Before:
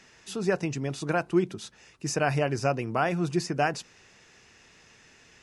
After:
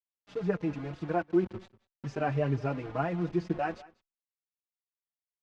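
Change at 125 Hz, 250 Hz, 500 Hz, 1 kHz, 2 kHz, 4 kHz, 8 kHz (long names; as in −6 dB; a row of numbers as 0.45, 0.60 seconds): −2.5 dB, −2.0 dB, −4.0 dB, −5.0 dB, −9.0 dB, −14.5 dB, below −20 dB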